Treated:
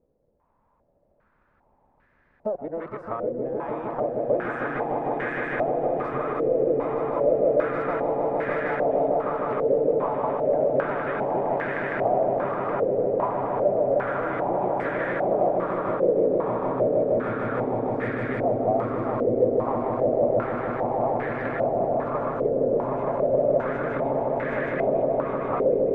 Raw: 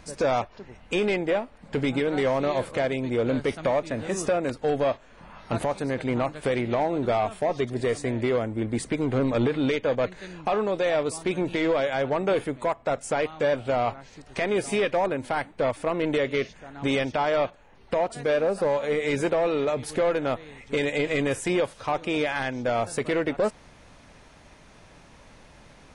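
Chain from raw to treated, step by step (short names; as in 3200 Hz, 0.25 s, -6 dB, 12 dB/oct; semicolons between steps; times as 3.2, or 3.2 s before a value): whole clip reversed; gate -45 dBFS, range -17 dB; transient shaper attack +8 dB, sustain +3 dB; compressor, threshold -27 dBFS, peak gain reduction 12 dB; on a send: swelling echo 0.154 s, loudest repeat 8, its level -5 dB; on the sum: stepped low-pass 2.5 Hz 500–1700 Hz; gain -5.5 dB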